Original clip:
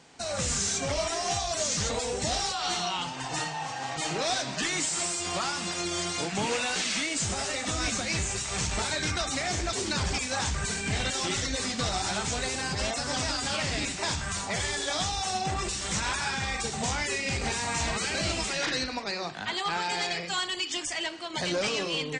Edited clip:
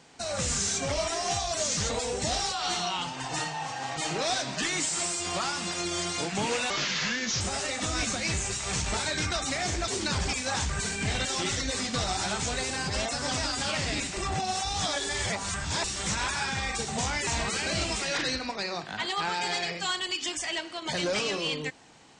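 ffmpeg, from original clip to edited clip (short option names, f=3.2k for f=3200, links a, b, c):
-filter_complex "[0:a]asplit=6[a][b][c][d][e][f];[a]atrim=end=6.704[g];[b]atrim=start=6.7:end=7.26,asetpts=PTS-STARTPTS,asetrate=34839,aresample=44100[h];[c]atrim=start=7.256:end=14.022[i];[d]atrim=start=14.018:end=15.692,asetpts=PTS-STARTPTS,areverse[j];[e]atrim=start=15.688:end=17.122[k];[f]atrim=start=17.748[l];[g][h]acrossfade=d=0.004:c1=hsin:c2=hsin[m];[m][i]acrossfade=d=0.004:c1=hsin:c2=hsin[n];[n][j]acrossfade=d=0.004:c1=hsin:c2=hsin[o];[o][k]acrossfade=d=0.004:c1=hsin:c2=hsin[p];[p][l]acrossfade=d=0.004:c1=hsin:c2=hsin"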